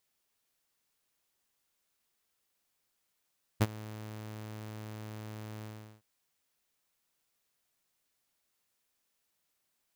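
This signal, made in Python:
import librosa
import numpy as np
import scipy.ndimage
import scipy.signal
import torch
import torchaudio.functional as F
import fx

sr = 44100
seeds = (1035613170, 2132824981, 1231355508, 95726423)

y = fx.adsr_tone(sr, wave='saw', hz=108.0, attack_ms=21.0, decay_ms=39.0, sustain_db=-21.0, held_s=2.03, release_ms=388.0, level_db=-18.0)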